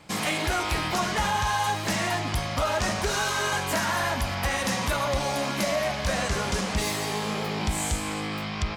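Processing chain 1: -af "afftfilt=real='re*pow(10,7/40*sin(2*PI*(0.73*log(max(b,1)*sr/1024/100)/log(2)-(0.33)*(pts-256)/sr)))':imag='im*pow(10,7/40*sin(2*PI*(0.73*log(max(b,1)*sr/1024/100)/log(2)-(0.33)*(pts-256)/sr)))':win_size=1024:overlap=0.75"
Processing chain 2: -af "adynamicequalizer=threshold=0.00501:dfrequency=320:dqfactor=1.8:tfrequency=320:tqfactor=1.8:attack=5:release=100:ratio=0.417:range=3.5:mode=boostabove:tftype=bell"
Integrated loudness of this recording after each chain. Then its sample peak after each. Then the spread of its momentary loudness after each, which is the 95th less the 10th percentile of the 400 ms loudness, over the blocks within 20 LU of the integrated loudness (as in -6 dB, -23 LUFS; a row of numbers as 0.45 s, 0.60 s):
-26.0 LUFS, -25.5 LUFS; -14.0 dBFS, -13.5 dBFS; 3 LU, 3 LU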